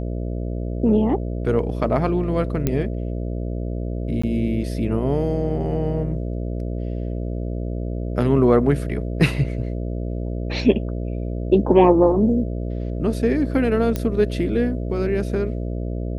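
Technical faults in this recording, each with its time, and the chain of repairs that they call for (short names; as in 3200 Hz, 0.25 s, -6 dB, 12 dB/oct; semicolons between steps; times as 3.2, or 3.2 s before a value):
buzz 60 Hz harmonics 11 -26 dBFS
2.67 pop -8 dBFS
4.22–4.24 gap 15 ms
13.96 pop -10 dBFS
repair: de-click; de-hum 60 Hz, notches 11; interpolate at 4.22, 15 ms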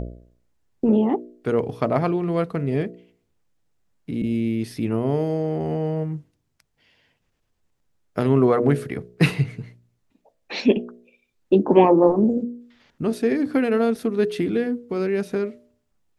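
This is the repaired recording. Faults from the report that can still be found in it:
none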